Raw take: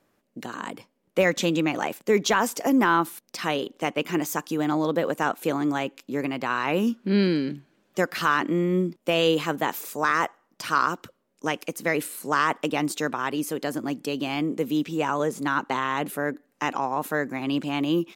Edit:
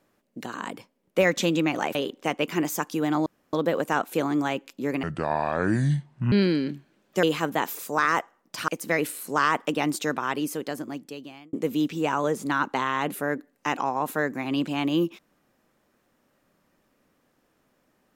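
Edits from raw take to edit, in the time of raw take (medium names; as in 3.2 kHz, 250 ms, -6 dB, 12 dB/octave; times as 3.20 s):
1.95–3.52 s: delete
4.83 s: insert room tone 0.27 s
6.33–7.13 s: speed 62%
8.04–9.29 s: delete
10.74–11.64 s: delete
13.30–14.49 s: fade out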